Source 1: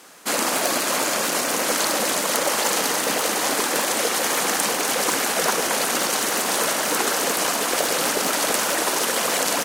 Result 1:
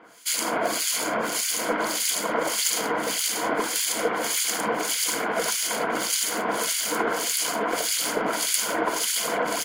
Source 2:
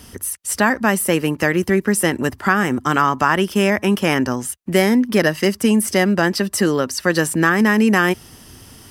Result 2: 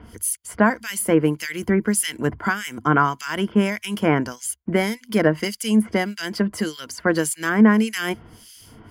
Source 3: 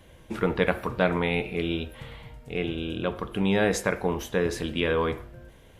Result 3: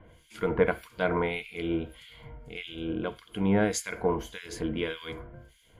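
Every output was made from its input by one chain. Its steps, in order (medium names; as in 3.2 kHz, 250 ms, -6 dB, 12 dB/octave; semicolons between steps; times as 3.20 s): harmonic tremolo 1.7 Hz, depth 100%, crossover 2.1 kHz; rippled EQ curve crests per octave 1.8, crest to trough 8 dB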